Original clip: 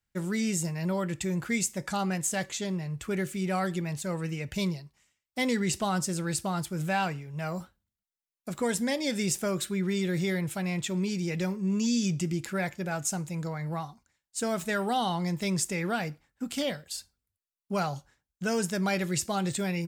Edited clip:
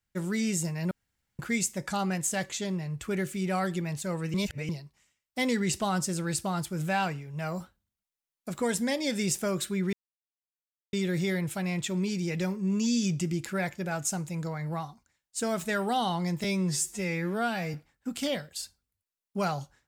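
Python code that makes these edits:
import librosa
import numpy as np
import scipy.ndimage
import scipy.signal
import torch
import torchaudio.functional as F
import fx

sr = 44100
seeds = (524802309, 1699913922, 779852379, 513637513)

y = fx.edit(x, sr, fx.room_tone_fill(start_s=0.91, length_s=0.48),
    fx.reverse_span(start_s=4.34, length_s=0.35),
    fx.insert_silence(at_s=9.93, length_s=1.0),
    fx.stretch_span(start_s=15.44, length_s=0.65, factor=2.0), tone=tone)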